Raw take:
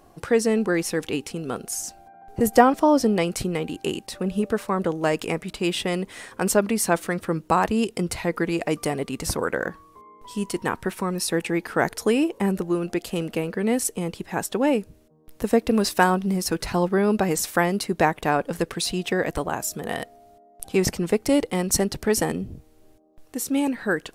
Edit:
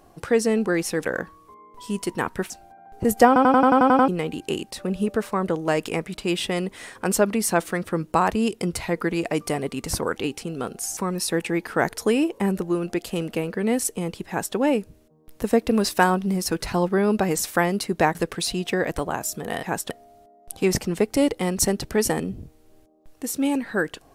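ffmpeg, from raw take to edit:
-filter_complex "[0:a]asplit=17[a][b][c][d][e][f][g][h][i][j][k][l][m][n][o][p][q];[a]atrim=end=1.052[r];[b]atrim=start=9.518:end=10.972[s];[c]atrim=start=1.858:end=2.722[t];[d]atrim=start=2.628:end=2.722[u];[e]atrim=start=2.628:end=2.722[v];[f]atrim=start=2.628:end=2.722[w];[g]atrim=start=2.628:end=2.722[x];[h]atrim=start=2.628:end=2.722[y];[i]atrim=start=2.628:end=2.722[z];[j]atrim=start=2.628:end=2.722[aa];[k]atrim=start=2.628:end=2.722[ab];[l]atrim=start=3.438:end=9.522[ac];[m]atrim=start=1.048:end=1.862[ad];[n]atrim=start=10.968:end=18.152[ae];[o]atrim=start=18.538:end=20.022[af];[p]atrim=start=14.278:end=14.552[ag];[q]atrim=start=20.018[ah];[r][s]acrossfade=d=0.004:c1=hsin:c2=hsin[ai];[ai][t]acrossfade=d=0.004:c1=hsin:c2=hsin[aj];[aj][u]acrossfade=d=0.004:c1=hsin:c2=hsin[ak];[ak][v]acrossfade=d=0.004:c1=hsin:c2=hsin[al];[al][w]acrossfade=d=0.004:c1=hsin:c2=hsin[am];[am][x]acrossfade=d=0.004:c1=hsin:c2=hsin[an];[an][y]acrossfade=d=0.004:c1=hsin:c2=hsin[ao];[ao][z]acrossfade=d=0.004:c1=hsin:c2=hsin[ap];[ap][aa]acrossfade=d=0.004:c1=hsin:c2=hsin[aq];[aq][ab]acrossfade=d=0.004:c1=hsin:c2=hsin[ar];[ar][ac]acrossfade=d=0.004:c1=hsin:c2=hsin[as];[as][ad]acrossfade=d=0.004:c1=hsin:c2=hsin[at];[at][ae]acrossfade=d=0.004:c1=hsin:c2=hsin[au];[au][af]acrossfade=d=0.004:c1=hsin:c2=hsin[av];[av][ag]acrossfade=d=0.004:c1=hsin:c2=hsin[aw];[aw][ah]acrossfade=d=0.004:c1=hsin:c2=hsin"

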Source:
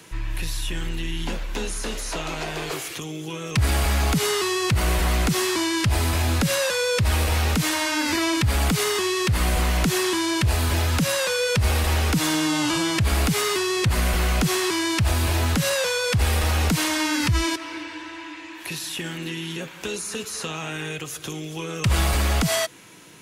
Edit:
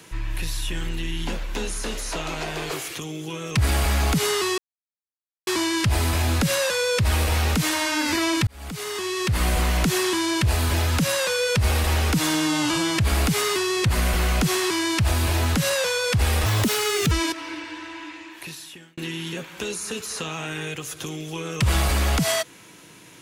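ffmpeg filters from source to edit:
-filter_complex "[0:a]asplit=7[a][b][c][d][e][f][g];[a]atrim=end=4.58,asetpts=PTS-STARTPTS,afade=t=out:st=4.576:d=0.004:c=hsin[h];[b]atrim=start=4.58:end=5.47,asetpts=PTS-STARTPTS,volume=0[i];[c]atrim=start=5.47:end=8.47,asetpts=PTS-STARTPTS,afade=t=in:d=0.004:c=hsin,afade=t=out:st=2.996:d=0.004:c=hsin[j];[d]atrim=start=8.47:end=16.464,asetpts=PTS-STARTPTS,afade=t=in:d=0.97[k];[e]atrim=start=16.46:end=17.35,asetpts=PTS-STARTPTS,asetrate=59976,aresample=44100[l];[f]atrim=start=17.346:end=19.21,asetpts=PTS-STARTPTS,afade=t=out:st=0.964:d=0.9[m];[g]atrim=start=19.21,asetpts=PTS-STARTPTS,afade=t=in:d=0.004:c=hsin[n];[h][i][j][k]concat=n=4:v=0:a=1[o];[o][l]acrossfade=d=0.004:c1=hsin:c2=hsin[p];[m][n]concat=n=2:v=0:a=1[q];[p][q]acrossfade=d=0.004:c1=hsin:c2=hsin"

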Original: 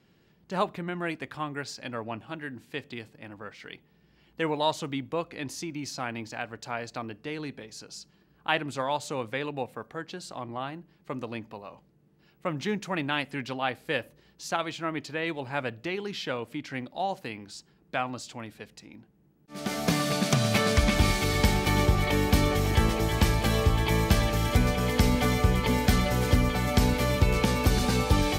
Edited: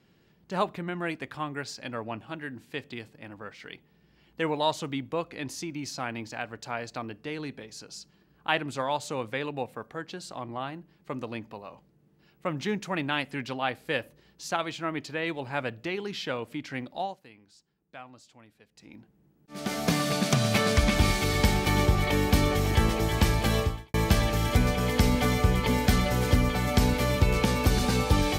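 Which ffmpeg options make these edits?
-filter_complex "[0:a]asplit=4[a][b][c][d];[a]atrim=end=17.16,asetpts=PTS-STARTPTS,afade=t=out:st=16.99:d=0.17:silence=0.177828[e];[b]atrim=start=17.16:end=18.73,asetpts=PTS-STARTPTS,volume=-15dB[f];[c]atrim=start=18.73:end=23.94,asetpts=PTS-STARTPTS,afade=t=in:d=0.17:silence=0.177828,afade=t=out:st=4.86:d=0.35:c=qua[g];[d]atrim=start=23.94,asetpts=PTS-STARTPTS,afade=t=in:d=0.004:c=hsin[h];[e][f][g][h]concat=n=4:v=0:a=1"

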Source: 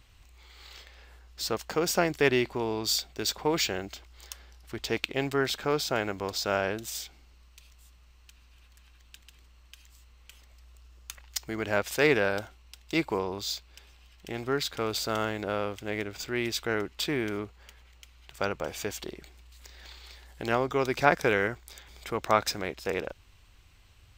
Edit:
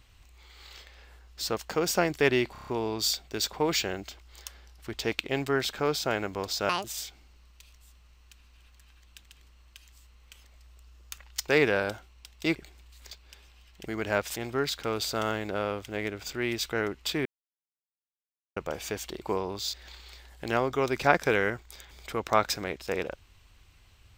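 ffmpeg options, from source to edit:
-filter_complex "[0:a]asplit=17[a][b][c][d][e][f][g][h][i][j][k][l][m][n][o][p][q];[a]atrim=end=2.552[r];[b]atrim=start=2.518:end=2.552[s];[c]atrim=start=2.518:end=2.552[t];[d]atrim=start=2.518:end=2.552[u];[e]atrim=start=2.518:end=2.552[v];[f]atrim=start=2.518:end=6.544[w];[g]atrim=start=6.54:end=6.82,asetpts=PTS-STARTPTS,asetrate=80262,aresample=44100[x];[h]atrim=start=6.816:end=11.462[y];[i]atrim=start=11.968:end=13.042[z];[j]atrim=start=19.148:end=19.712[aa];[k]atrim=start=13.558:end=14.302[ab];[l]atrim=start=11.458:end=11.972[ac];[m]atrim=start=14.298:end=17.19,asetpts=PTS-STARTPTS,afade=t=out:st=2.888:d=0.004:c=hsin[ad];[n]atrim=start=17.19:end=18.5,asetpts=PTS-STARTPTS,volume=0[ae];[o]atrim=start=18.5:end=19.152,asetpts=PTS-STARTPTS,afade=t=in:d=0.004:c=hsin[af];[p]atrim=start=13.038:end=13.562[ag];[q]atrim=start=19.708[ah];[r][s]acrossfade=d=0.004:c1=hsin:c2=hsin[ai];[ai][t]acrossfade=d=0.004:c1=hsin:c2=hsin[aj];[aj][u]acrossfade=d=0.004:c1=hsin:c2=hsin[ak];[ak][v]acrossfade=d=0.004:c1=hsin:c2=hsin[al];[al][w]acrossfade=d=0.004:c1=hsin:c2=hsin[am];[am][x]acrossfade=d=0.004:c1=hsin:c2=hsin[an];[an][y]acrossfade=d=0.004:c1=hsin:c2=hsin[ao];[ao][z]acrossfade=d=0.004:c1=hsin:c2=hsin[ap];[ap][aa]acrossfade=d=0.004:c1=hsin:c2=hsin[aq];[aq][ab]acrossfade=d=0.004:c1=hsin:c2=hsin[ar];[ar][ac]acrossfade=d=0.004:c1=hsin:c2=hsin[as];[ad][ae][af]concat=n=3:v=0:a=1[at];[as][at]acrossfade=d=0.004:c1=hsin:c2=hsin[au];[au][ag]acrossfade=d=0.004:c1=hsin:c2=hsin[av];[av][ah]acrossfade=d=0.004:c1=hsin:c2=hsin"

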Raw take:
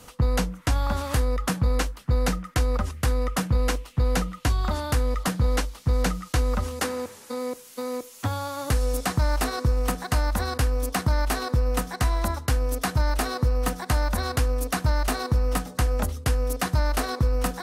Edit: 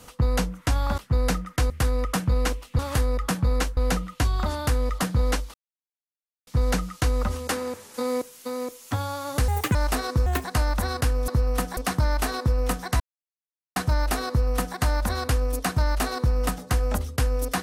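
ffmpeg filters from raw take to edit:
-filter_complex "[0:a]asplit=16[a][b][c][d][e][f][g][h][i][j][k][l][m][n][o][p];[a]atrim=end=0.982[q];[b]atrim=start=1.958:end=2.682[r];[c]atrim=start=2.928:end=4.022[s];[d]atrim=start=0.978:end=1.962[t];[e]atrim=start=4.018:end=5.79,asetpts=PTS-STARTPTS,afade=t=out:st=1.768:d=0.004:c=hsin,apad=pad_dur=0.93[u];[f]atrim=start=5.79:end=7.262,asetpts=PTS-STARTPTS,afade=t=in:d=0.004:c=hsin[v];[g]atrim=start=7.258:end=7.542,asetpts=PTS-STARTPTS,volume=4dB[w];[h]atrim=start=7.538:end=8.804[x];[i]atrim=start=8.8:end=9.24,asetpts=PTS-STARTPTS,asetrate=71883,aresample=44100,atrim=end_sample=11904,asetpts=PTS-STARTPTS[y];[j]atrim=start=9.236:end=9.754[z];[k]atrim=start=9.75:end=10.01,asetpts=PTS-STARTPTS,asetrate=63504,aresample=44100,atrim=end_sample=7962,asetpts=PTS-STARTPTS[aa];[l]atrim=start=10.006:end=10.852[ab];[m]atrim=start=13.358:end=13.852[ac];[n]atrim=start=10.848:end=12.08,asetpts=PTS-STARTPTS,afade=t=out:st=1.228:d=0.004:c=hsin[ad];[o]atrim=start=12.08:end=12.84,asetpts=PTS-STARTPTS,volume=0[ae];[p]atrim=start=12.84,asetpts=PTS-STARTPTS,afade=t=in:d=0.004:c=hsin[af];[q][r]acrossfade=d=0.004:c1=hsin:c2=hsin[ag];[ag][s]acrossfade=d=0.004:c1=hsin:c2=hsin[ah];[ah][t]acrossfade=d=0.004:c1=hsin:c2=hsin[ai];[u][v]concat=n=2:v=0:a=1[aj];[ai][aj]acrossfade=d=0.004:c1=hsin:c2=hsin[ak];[ak][w]acrossfade=d=0.004:c1=hsin:c2=hsin[al];[al][x]acrossfade=d=0.004:c1=hsin:c2=hsin[am];[am][y]acrossfade=d=0.004:c1=hsin:c2=hsin[an];[an][z]acrossfade=d=0.004:c1=hsin:c2=hsin[ao];[ao][aa]acrossfade=d=0.004:c1=hsin:c2=hsin[ap];[ap][ab]acrossfade=d=0.004:c1=hsin:c2=hsin[aq];[aq][ac]acrossfade=d=0.004:c1=hsin:c2=hsin[ar];[ad][ae][af]concat=n=3:v=0:a=1[as];[ar][as]acrossfade=d=0.004:c1=hsin:c2=hsin"

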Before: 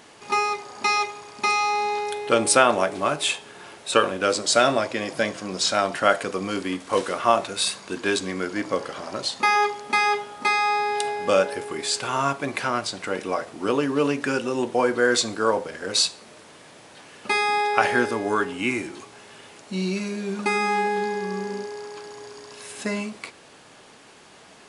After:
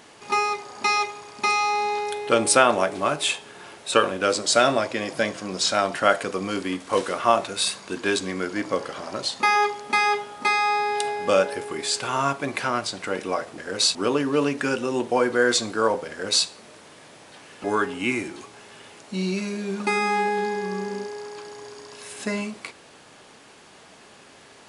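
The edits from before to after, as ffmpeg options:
-filter_complex "[0:a]asplit=4[a][b][c][d];[a]atrim=end=13.582[e];[b]atrim=start=15.728:end=16.102[f];[c]atrim=start=13.578:end=17.272[g];[d]atrim=start=18.228[h];[e][f]acrossfade=d=0.004:c1=hsin:c2=hsin[i];[i][g]acrossfade=d=0.004:c1=hsin:c2=hsin[j];[j][h]acrossfade=d=0.004:c1=hsin:c2=hsin"

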